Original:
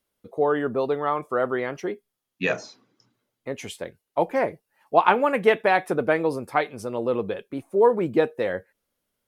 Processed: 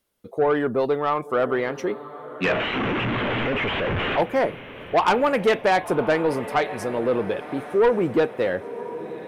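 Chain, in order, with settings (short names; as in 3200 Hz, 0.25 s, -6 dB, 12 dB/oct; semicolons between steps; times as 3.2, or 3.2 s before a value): 2.44–4.21 delta modulation 16 kbps, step -21 dBFS; diffused feedback echo 1.06 s, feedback 46%, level -16 dB; soft clip -16 dBFS, distortion -12 dB; gain +3.5 dB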